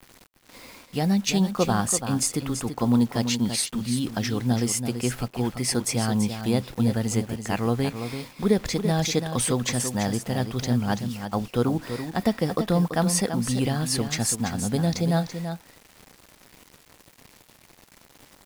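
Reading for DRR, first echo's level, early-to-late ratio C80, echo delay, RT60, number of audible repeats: no reverb, -8.5 dB, no reverb, 335 ms, no reverb, 1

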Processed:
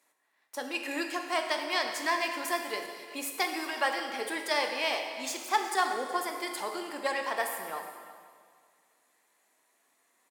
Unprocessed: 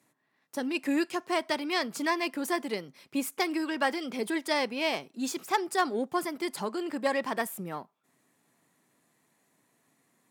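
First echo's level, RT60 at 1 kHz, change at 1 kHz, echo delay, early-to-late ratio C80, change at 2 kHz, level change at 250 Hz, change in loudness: -17.5 dB, 1.8 s, +1.0 dB, 370 ms, 6.0 dB, +1.5 dB, -9.0 dB, -0.5 dB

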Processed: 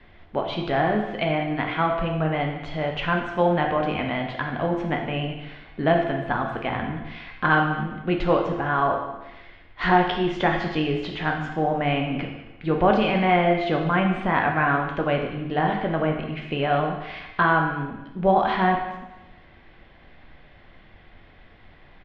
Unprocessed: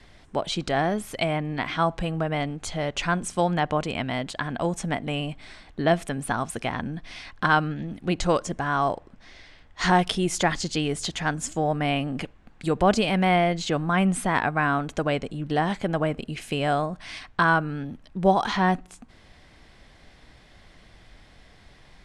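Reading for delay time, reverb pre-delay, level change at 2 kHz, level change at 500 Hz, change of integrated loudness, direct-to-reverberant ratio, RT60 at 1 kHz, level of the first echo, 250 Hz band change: 195 ms, 9 ms, +2.0 dB, +2.5 dB, +2.0 dB, 1.5 dB, 1.0 s, -18.0 dB, +1.5 dB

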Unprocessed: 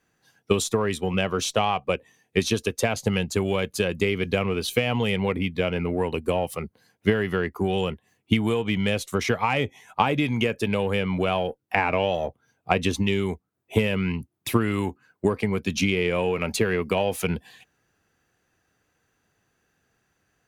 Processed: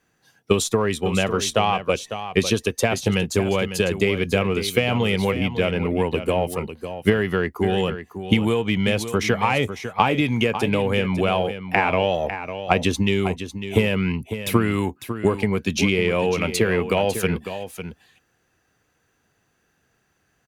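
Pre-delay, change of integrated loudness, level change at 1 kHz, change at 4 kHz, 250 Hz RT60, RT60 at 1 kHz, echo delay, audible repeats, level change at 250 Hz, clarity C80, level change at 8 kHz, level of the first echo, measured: no reverb, +3.0 dB, +3.5 dB, +3.5 dB, no reverb, no reverb, 551 ms, 1, +3.5 dB, no reverb, +3.5 dB, -10.5 dB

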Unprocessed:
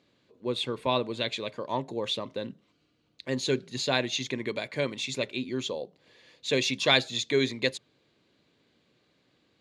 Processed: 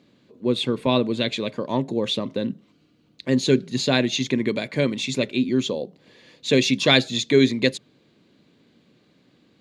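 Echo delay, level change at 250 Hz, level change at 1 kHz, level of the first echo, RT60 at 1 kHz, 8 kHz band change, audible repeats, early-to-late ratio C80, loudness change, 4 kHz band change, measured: no echo, +12.0 dB, +2.5 dB, no echo, no reverb, +5.0 dB, no echo, no reverb, +7.0 dB, +5.0 dB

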